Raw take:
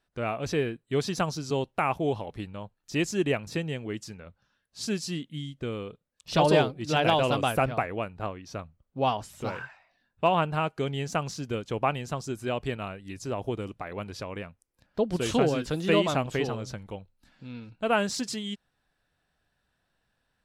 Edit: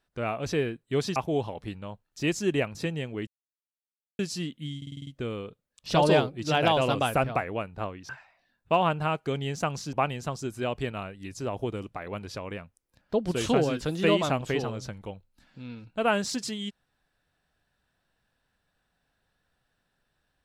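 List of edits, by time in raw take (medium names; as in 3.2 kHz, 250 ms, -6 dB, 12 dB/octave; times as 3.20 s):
1.16–1.88 s: delete
3.99–4.91 s: mute
5.49 s: stutter 0.05 s, 7 plays
8.51–9.61 s: delete
11.45–11.78 s: delete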